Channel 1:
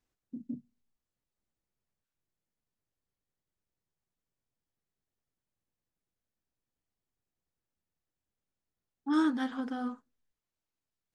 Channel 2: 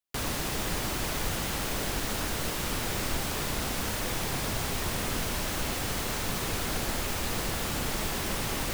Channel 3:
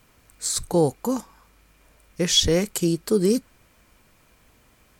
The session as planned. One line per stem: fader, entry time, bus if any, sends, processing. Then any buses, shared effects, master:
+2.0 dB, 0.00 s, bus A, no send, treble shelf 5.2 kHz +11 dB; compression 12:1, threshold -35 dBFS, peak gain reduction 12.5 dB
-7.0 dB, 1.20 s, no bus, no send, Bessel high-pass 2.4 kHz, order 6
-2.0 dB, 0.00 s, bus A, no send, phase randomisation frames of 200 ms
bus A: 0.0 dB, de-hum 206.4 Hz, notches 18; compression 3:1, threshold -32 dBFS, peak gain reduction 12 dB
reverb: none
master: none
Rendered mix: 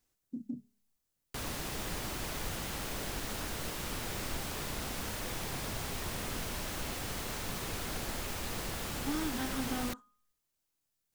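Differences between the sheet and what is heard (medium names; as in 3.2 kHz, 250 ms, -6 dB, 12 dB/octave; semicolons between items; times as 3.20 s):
stem 2: missing Bessel high-pass 2.4 kHz, order 6; stem 3: muted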